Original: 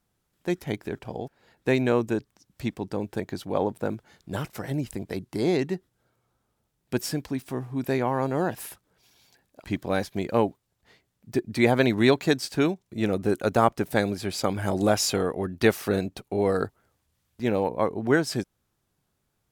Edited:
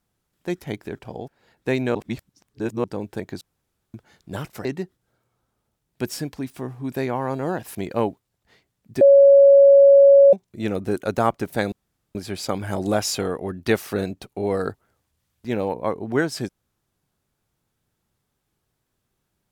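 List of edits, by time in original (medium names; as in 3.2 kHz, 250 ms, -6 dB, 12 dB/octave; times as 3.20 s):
1.95–2.84 s: reverse
3.41–3.94 s: room tone
4.65–5.57 s: delete
8.67–10.13 s: delete
11.39–12.71 s: bleep 557 Hz -7.5 dBFS
14.10 s: insert room tone 0.43 s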